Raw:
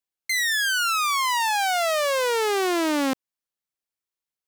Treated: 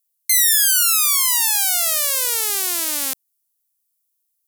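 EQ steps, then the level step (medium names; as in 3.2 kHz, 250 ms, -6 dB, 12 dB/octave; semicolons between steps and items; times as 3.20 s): RIAA curve recording; treble shelf 2.2 kHz +10 dB; peaking EQ 12 kHz +6 dB 1 oct; -10.0 dB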